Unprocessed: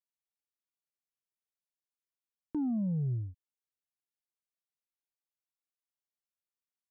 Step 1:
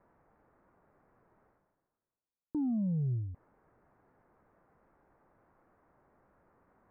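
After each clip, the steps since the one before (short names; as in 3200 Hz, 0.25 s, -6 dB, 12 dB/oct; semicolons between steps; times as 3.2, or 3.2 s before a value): Bessel low-pass 910 Hz, order 8; reverse; upward compressor, threshold -38 dBFS; reverse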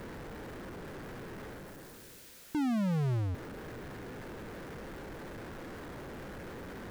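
band shelf 900 Hz -9 dB 1.3 oct; power-law curve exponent 0.35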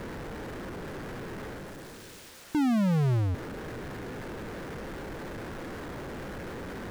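median filter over 3 samples; gain +5.5 dB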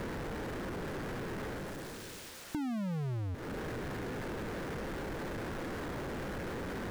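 compressor 6:1, threshold -37 dBFS, peak gain reduction 11.5 dB; gain +1 dB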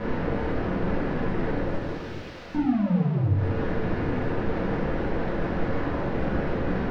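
air absorption 250 m; shoebox room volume 170 m³, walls mixed, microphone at 1.9 m; gain +3.5 dB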